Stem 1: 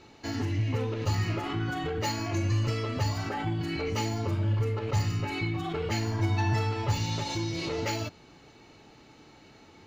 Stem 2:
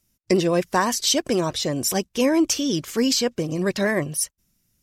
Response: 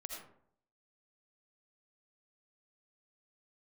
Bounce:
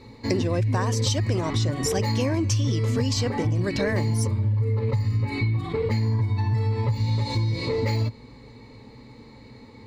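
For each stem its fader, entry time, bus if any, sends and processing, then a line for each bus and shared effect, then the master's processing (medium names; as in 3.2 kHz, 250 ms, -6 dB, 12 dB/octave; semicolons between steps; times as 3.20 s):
-0.5 dB, 0.00 s, no send, bass shelf 420 Hz +11 dB; compression, threshold -19 dBFS, peak gain reduction 7 dB; rippled EQ curve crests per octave 0.96, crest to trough 13 dB
-1.5 dB, 0.00 s, no send, low-pass 8.1 kHz 12 dB/octave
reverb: none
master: compression, threshold -20 dBFS, peak gain reduction 7.5 dB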